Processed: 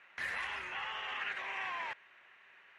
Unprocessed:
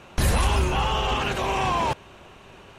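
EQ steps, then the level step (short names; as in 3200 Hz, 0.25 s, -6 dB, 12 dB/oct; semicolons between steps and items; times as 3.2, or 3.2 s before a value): band-pass 1900 Hz, Q 5.2; 0.0 dB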